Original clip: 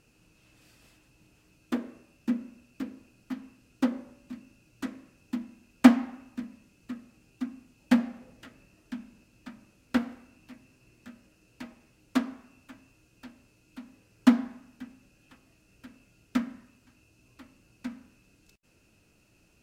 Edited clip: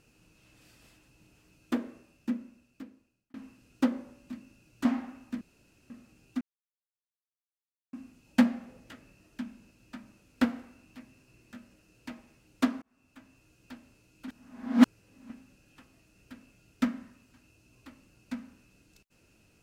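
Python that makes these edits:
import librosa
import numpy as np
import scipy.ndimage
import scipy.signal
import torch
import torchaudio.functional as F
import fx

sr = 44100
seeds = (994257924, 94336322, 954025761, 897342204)

y = fx.edit(x, sr, fx.fade_out_span(start_s=1.8, length_s=1.54),
    fx.cut(start_s=4.85, length_s=1.05),
    fx.room_tone_fill(start_s=6.46, length_s=0.49),
    fx.insert_silence(at_s=7.46, length_s=1.52),
    fx.fade_in_span(start_s=12.35, length_s=0.91, curve='qsin'),
    fx.reverse_span(start_s=13.81, length_s=1.02), tone=tone)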